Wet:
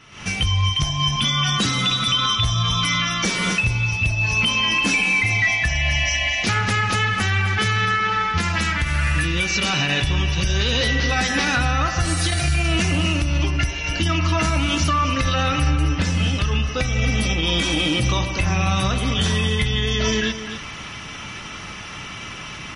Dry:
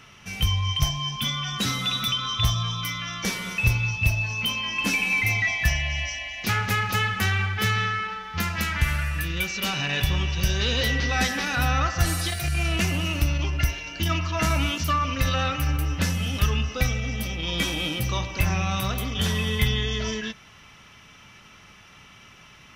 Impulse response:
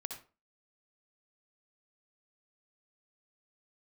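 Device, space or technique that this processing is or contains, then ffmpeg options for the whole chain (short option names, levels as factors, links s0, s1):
low-bitrate web radio: -filter_complex "[0:a]equalizer=f=310:t=o:w=0.21:g=5,asettb=1/sr,asplit=3[s0][s1][s2];[s0]atrim=end=15.704[s3];[s1]atrim=start=15.7:end=16.8,asetpts=PTS-STARTPTS,afade=t=in:d=0.004:c=qsin,afade=t=out:st=1.096:d=0.004:c=qsin,lowpass=7000[s4];[s2]atrim=start=16.796[s5];[s3][s4]acrossfade=d=0.004:c1=hsin:c2=qsin[s6];[s6][s5]acrossfade=d=0.004:c1=qsin:c2=hsin,aecho=1:1:256:0.168,dynaudnorm=f=110:g=3:m=6.31,alimiter=limit=0.299:level=0:latency=1:release=209" -ar 32000 -c:a libmp3lame -b:a 40k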